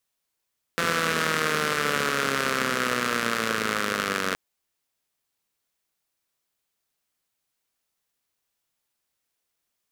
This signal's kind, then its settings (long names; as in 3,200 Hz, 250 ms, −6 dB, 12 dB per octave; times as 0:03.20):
pulse-train model of a four-cylinder engine, changing speed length 3.57 s, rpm 5,100, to 2,800, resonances 240/450/1,300 Hz